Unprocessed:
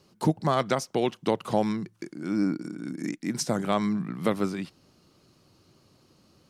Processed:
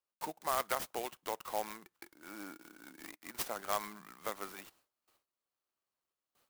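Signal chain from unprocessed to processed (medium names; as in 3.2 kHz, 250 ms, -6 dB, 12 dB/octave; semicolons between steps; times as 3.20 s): high-pass 900 Hz 12 dB/octave; gate with hold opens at -55 dBFS; tremolo saw up 0.98 Hz, depth 35%; in parallel at -10 dB: sample-rate reducer 3.1 kHz; on the sum: sampling jitter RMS 0.053 ms; trim -4 dB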